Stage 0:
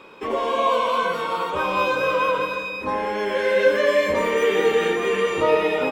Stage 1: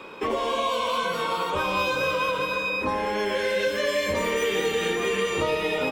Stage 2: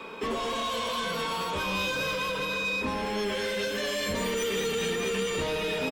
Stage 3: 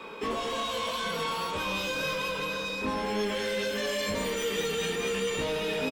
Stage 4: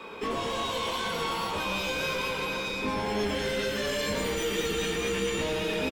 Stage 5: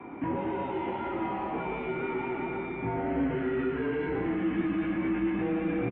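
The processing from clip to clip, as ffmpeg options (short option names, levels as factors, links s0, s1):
-filter_complex "[0:a]acrossover=split=160|3000[s0][s1][s2];[s1]acompressor=threshold=0.0398:ratio=6[s3];[s0][s3][s2]amix=inputs=3:normalize=0,volume=1.58"
-filter_complex "[0:a]aecho=1:1:4.5:0.41,acrossover=split=270|3000[s0][s1][s2];[s1]asoftclip=type=tanh:threshold=0.0299[s3];[s0][s3][s2]amix=inputs=3:normalize=0"
-filter_complex "[0:a]aeval=exprs='val(0)+0.00126*sin(2*PI*850*n/s)':c=same,asplit=2[s0][s1];[s1]adelay=19,volume=0.531[s2];[s0][s2]amix=inputs=2:normalize=0,volume=0.794"
-filter_complex "[0:a]aeval=exprs='0.119*(cos(1*acos(clip(val(0)/0.119,-1,1)))-cos(1*PI/2))+0.0119*(cos(2*acos(clip(val(0)/0.119,-1,1)))-cos(2*PI/2))':c=same,asplit=8[s0][s1][s2][s3][s4][s5][s6][s7];[s1]adelay=115,afreqshift=-130,volume=0.376[s8];[s2]adelay=230,afreqshift=-260,volume=0.214[s9];[s3]adelay=345,afreqshift=-390,volume=0.122[s10];[s4]adelay=460,afreqshift=-520,volume=0.07[s11];[s5]adelay=575,afreqshift=-650,volume=0.0398[s12];[s6]adelay=690,afreqshift=-780,volume=0.0226[s13];[s7]adelay=805,afreqshift=-910,volume=0.0129[s14];[s0][s8][s9][s10][s11][s12][s13][s14]amix=inputs=8:normalize=0"
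-af "tiltshelf=f=760:g=6.5,highpass=f=310:t=q:w=0.5412,highpass=f=310:t=q:w=1.307,lowpass=f=2500:t=q:w=0.5176,lowpass=f=2500:t=q:w=0.7071,lowpass=f=2500:t=q:w=1.932,afreqshift=-140"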